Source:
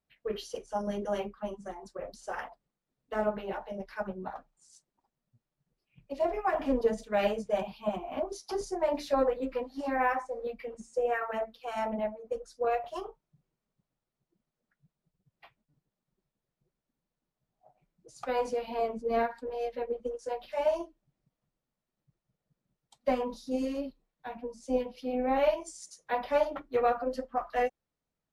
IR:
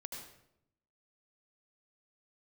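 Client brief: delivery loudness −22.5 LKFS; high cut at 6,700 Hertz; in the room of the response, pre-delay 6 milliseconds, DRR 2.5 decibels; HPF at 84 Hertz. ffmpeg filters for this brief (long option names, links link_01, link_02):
-filter_complex "[0:a]highpass=84,lowpass=6700,asplit=2[link_01][link_02];[1:a]atrim=start_sample=2205,adelay=6[link_03];[link_02][link_03]afir=irnorm=-1:irlink=0,volume=0dB[link_04];[link_01][link_04]amix=inputs=2:normalize=0,volume=8dB"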